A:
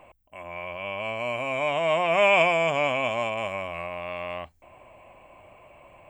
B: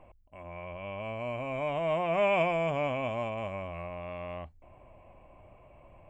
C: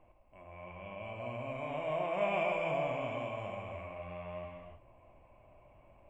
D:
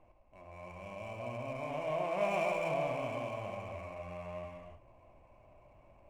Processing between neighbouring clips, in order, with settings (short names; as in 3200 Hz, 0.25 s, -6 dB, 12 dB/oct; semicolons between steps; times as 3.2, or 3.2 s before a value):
tilt -3 dB/oct; gain -7.5 dB
non-linear reverb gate 0.36 s flat, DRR -0.5 dB; gain -8.5 dB
median filter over 9 samples